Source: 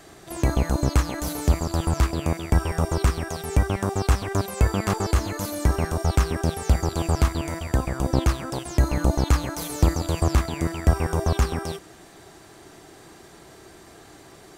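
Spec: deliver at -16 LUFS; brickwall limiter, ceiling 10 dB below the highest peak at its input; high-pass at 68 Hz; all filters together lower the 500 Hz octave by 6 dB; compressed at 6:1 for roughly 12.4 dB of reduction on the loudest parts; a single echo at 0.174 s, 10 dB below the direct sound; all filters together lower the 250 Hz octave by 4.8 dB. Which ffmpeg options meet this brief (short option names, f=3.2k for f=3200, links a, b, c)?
-af "highpass=68,equalizer=f=250:t=o:g=-5,equalizer=f=500:t=o:g=-6.5,acompressor=threshold=-30dB:ratio=6,alimiter=level_in=2dB:limit=-24dB:level=0:latency=1,volume=-2dB,aecho=1:1:174:0.316,volume=22.5dB"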